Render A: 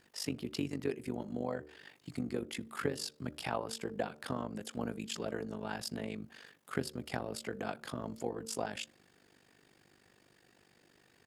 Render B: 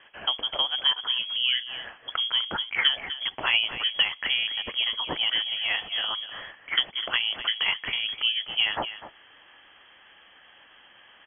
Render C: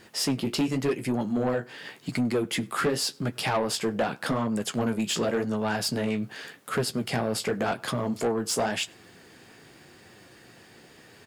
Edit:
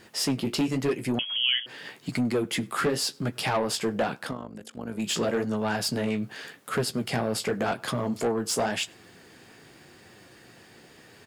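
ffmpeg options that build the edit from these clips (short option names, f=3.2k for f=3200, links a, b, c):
-filter_complex "[2:a]asplit=3[a][b][c];[a]atrim=end=1.192[d];[1:a]atrim=start=1.188:end=1.662[e];[b]atrim=start=1.658:end=4.38[f];[0:a]atrim=start=4.14:end=5.08[g];[c]atrim=start=4.84[h];[d][e]acrossfade=d=0.004:c1=hsin:c2=hsin[i];[i][f]acrossfade=d=0.004:c1=hsin:c2=hsin[j];[j][g]acrossfade=d=0.24:c1=tri:c2=tri[k];[k][h]acrossfade=d=0.24:c1=tri:c2=tri"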